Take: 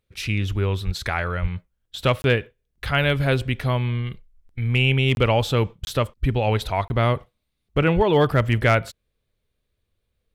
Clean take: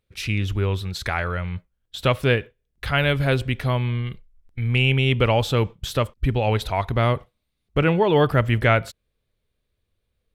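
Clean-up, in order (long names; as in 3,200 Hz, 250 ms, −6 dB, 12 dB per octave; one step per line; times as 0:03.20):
clipped peaks rebuilt −8.5 dBFS
0:00.85–0:00.97: high-pass filter 140 Hz 24 dB per octave
0:01.41–0:01.53: high-pass filter 140 Hz 24 dB per octave
0:07.95–0:08.07: high-pass filter 140 Hz 24 dB per octave
repair the gap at 0:02.22/0:05.15/0:05.85/0:06.88, 21 ms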